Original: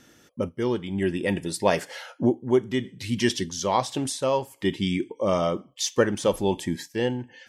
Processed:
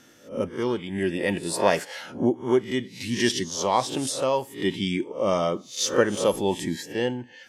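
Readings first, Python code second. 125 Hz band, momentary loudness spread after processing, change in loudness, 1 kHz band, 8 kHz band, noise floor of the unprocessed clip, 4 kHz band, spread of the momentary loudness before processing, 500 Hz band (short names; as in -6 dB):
-2.5 dB, 7 LU, +0.5 dB, +1.0 dB, +2.0 dB, -57 dBFS, +2.0 dB, 6 LU, +0.5 dB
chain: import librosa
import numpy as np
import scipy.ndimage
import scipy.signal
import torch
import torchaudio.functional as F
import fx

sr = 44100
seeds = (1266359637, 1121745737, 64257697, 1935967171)

y = fx.spec_swells(x, sr, rise_s=0.34)
y = fx.low_shelf(y, sr, hz=100.0, db=-9.5)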